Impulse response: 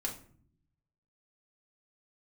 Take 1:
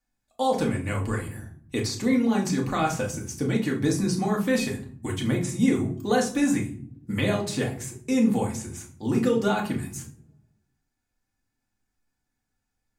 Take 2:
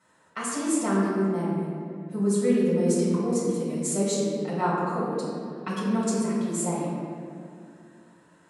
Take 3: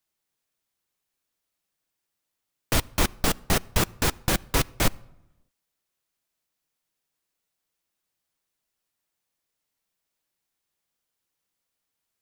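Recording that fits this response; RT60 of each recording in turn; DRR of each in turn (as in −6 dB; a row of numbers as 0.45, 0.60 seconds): 1; non-exponential decay, 2.4 s, 1.0 s; −2.0, −8.5, 17.0 decibels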